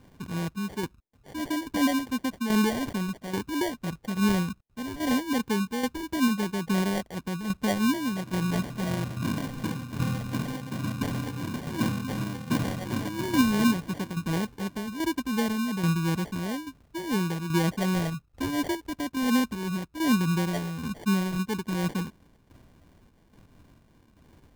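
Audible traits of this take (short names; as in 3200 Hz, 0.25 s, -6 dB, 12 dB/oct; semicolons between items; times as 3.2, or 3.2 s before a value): phasing stages 6, 2.8 Hz, lowest notch 590–2600 Hz; tremolo saw down 1.2 Hz, depth 60%; aliases and images of a low sample rate 1300 Hz, jitter 0%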